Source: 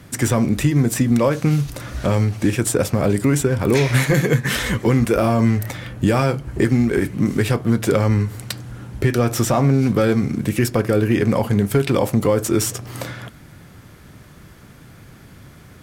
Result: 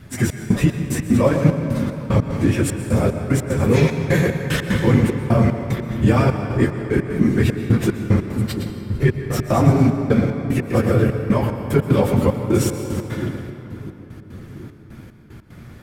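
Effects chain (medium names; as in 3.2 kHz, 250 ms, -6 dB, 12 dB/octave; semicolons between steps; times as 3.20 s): phase randomisation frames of 50 ms; two-band feedback delay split 330 Hz, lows 688 ms, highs 113 ms, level -8 dB; trance gate "xxx..xx..x.x" 150 bpm -60 dB; tone controls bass +3 dB, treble -5 dB; on a send at -7 dB: reverberation RT60 3.2 s, pre-delay 113 ms; on the sum: trim -1 dB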